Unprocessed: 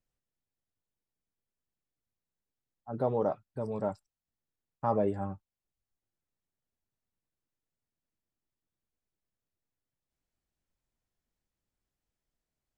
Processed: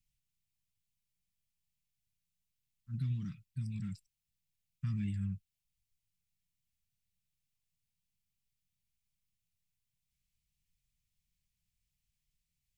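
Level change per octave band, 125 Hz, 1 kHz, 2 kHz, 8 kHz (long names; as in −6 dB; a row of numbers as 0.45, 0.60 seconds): +4.0 dB, below −30 dB, −5.5 dB, can't be measured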